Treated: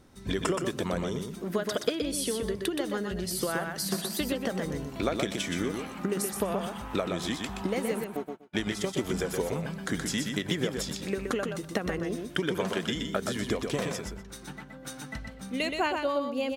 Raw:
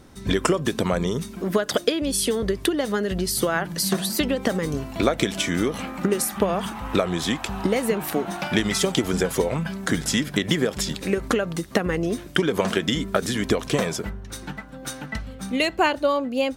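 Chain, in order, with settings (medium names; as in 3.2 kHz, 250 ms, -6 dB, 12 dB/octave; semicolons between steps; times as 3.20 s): 8.04–8.97 s: gate -22 dBFS, range -45 dB; on a send: feedback delay 123 ms, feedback 16%, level -5 dB; on the sum: trim -8.5 dB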